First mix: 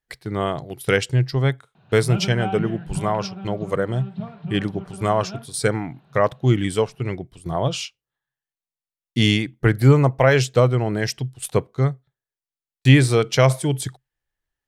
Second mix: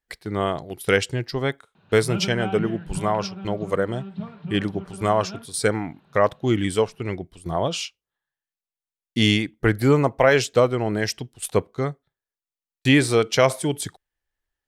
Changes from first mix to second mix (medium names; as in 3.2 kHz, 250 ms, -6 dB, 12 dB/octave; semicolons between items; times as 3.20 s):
background: add peaking EQ 710 Hz -9 dB 0.24 oct; master: add peaking EQ 130 Hz -12 dB 0.3 oct